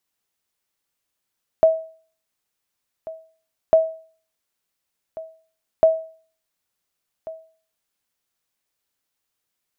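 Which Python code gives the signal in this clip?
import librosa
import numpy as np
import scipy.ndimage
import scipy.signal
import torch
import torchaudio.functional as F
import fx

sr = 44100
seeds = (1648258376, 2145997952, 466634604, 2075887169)

y = fx.sonar_ping(sr, hz=645.0, decay_s=0.44, every_s=2.1, pings=3, echo_s=1.44, echo_db=-19.5, level_db=-6.5)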